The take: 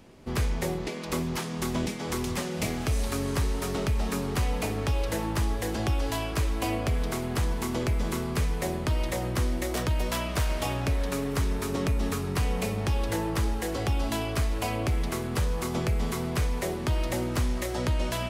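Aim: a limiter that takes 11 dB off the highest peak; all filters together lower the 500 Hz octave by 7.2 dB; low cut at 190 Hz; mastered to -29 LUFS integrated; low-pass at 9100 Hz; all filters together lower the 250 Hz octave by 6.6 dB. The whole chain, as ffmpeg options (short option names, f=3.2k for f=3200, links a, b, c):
-af "highpass=190,lowpass=9.1k,equalizer=f=250:t=o:g=-4,equalizer=f=500:t=o:g=-8,volume=10dB,alimiter=limit=-19.5dB:level=0:latency=1"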